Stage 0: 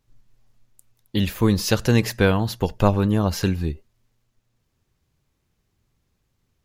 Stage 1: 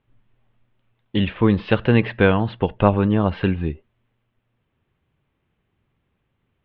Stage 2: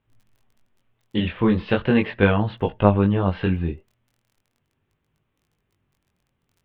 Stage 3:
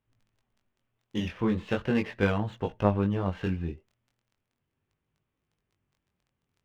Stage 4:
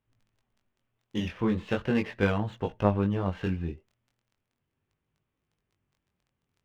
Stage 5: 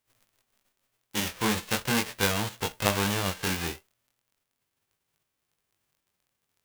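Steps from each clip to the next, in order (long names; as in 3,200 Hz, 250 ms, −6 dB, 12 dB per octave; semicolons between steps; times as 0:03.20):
Butterworth low-pass 3,300 Hz 48 dB per octave; low-shelf EQ 64 Hz −10.5 dB; level +3 dB
surface crackle 19 per second −46 dBFS; chorus effect 0.38 Hz, delay 19 ms, depth 4.5 ms; level +1 dB
windowed peak hold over 3 samples; level −8 dB
no processing that can be heard
spectral envelope flattened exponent 0.3; saturating transformer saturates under 1,700 Hz; level +1 dB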